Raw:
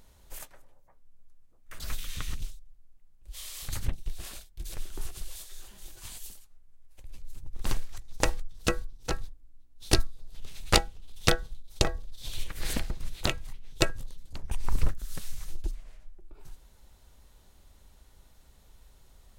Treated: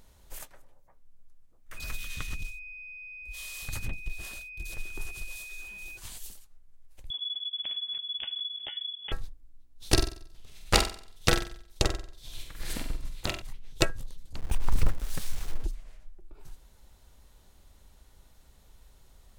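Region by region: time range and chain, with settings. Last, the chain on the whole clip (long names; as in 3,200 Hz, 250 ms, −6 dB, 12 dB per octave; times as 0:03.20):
0:01.76–0:05.96: steady tone 2,500 Hz −40 dBFS + tube saturation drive 17 dB, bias 0.4
0:07.10–0:09.12: downward compressor 16 to 1, threshold −34 dBFS + voice inversion scrambler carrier 3,400 Hz
0:09.92–0:13.42: double-tracking delay 49 ms −12 dB + flutter between parallel walls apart 7.9 metres, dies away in 0.56 s + expander for the loud parts, over −31 dBFS
0:14.38–0:15.64: hold until the input has moved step −44.5 dBFS + leveller curve on the samples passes 1
whole clip: no processing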